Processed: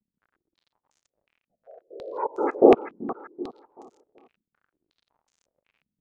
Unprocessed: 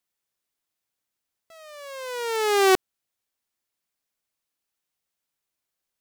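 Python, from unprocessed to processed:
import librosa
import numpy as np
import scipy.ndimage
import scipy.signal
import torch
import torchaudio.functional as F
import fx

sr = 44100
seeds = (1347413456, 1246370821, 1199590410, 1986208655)

p1 = fx.wiener(x, sr, points=41)
p2 = fx.hum_notches(p1, sr, base_hz=60, count=8)
p3 = fx.spec_gate(p2, sr, threshold_db=-10, keep='strong')
p4 = fx.step_gate(p3, sr, bpm=126, pattern='xxx.x.x.', floor_db=-24.0, edge_ms=4.5)
p5 = fx.whisperise(p4, sr, seeds[0])
p6 = fx.dmg_crackle(p5, sr, seeds[1], per_s=70.0, level_db=-54.0)
p7 = p6 + fx.echo_feedback(p6, sr, ms=383, feedback_pct=35, wet_db=-12.5, dry=0)
p8 = fx.filter_held_lowpass(p7, sr, hz=5.5, low_hz=210.0, high_hz=6700.0)
y = p8 * 10.0 ** (2.0 / 20.0)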